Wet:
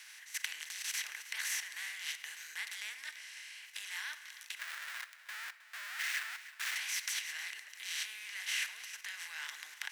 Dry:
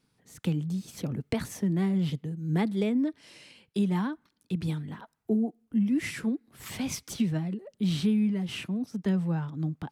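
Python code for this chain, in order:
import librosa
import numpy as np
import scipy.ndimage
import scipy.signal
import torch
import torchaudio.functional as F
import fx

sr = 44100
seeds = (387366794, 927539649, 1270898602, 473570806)

y = fx.bin_compress(x, sr, power=0.4)
y = fx.high_shelf(y, sr, hz=3100.0, db=9.0)
y = fx.level_steps(y, sr, step_db=15)
y = fx.schmitt(y, sr, flips_db=-33.0, at=(4.59, 6.76))
y = fx.ladder_highpass(y, sr, hz=1500.0, resonance_pct=55)
y = y + 10.0 ** (-16.0 / 20.0) * np.pad(y, (int(314 * sr / 1000.0), 0))[:len(y)]
y = fx.room_shoebox(y, sr, seeds[0], volume_m3=1100.0, walls='mixed', distance_m=0.43)
y = F.gain(torch.from_numpy(y), 4.0).numpy()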